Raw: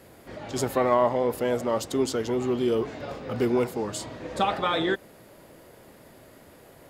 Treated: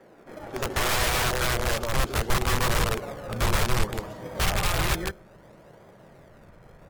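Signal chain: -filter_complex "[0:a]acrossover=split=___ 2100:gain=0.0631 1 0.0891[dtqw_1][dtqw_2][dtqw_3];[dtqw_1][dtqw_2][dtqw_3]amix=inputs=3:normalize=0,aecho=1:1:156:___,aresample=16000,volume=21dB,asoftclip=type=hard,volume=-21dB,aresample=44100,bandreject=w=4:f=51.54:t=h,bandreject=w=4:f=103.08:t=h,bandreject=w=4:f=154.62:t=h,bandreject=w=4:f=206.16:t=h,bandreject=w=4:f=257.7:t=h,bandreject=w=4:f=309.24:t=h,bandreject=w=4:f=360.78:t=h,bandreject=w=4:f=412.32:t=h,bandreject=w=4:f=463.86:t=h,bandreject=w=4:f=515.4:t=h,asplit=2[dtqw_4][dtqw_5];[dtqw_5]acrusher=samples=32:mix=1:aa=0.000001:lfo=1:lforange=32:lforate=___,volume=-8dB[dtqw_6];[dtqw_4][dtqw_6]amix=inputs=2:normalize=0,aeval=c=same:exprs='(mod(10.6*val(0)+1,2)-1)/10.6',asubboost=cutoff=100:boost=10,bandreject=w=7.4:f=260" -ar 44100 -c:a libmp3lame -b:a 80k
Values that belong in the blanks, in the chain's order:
160, 0.596, 0.64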